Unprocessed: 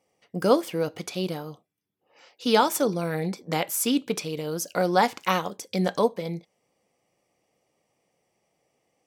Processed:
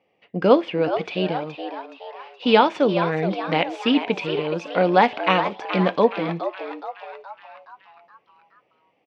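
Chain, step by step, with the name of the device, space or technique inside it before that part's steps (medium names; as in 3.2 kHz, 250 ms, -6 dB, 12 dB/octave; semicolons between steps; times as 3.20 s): frequency-shifting delay pedal into a guitar cabinet (frequency-shifting echo 421 ms, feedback 51%, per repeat +130 Hz, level -10 dB; cabinet simulation 97–3400 Hz, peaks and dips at 140 Hz -4 dB, 1.3 kHz -3 dB, 2.6 kHz +6 dB); trim +5 dB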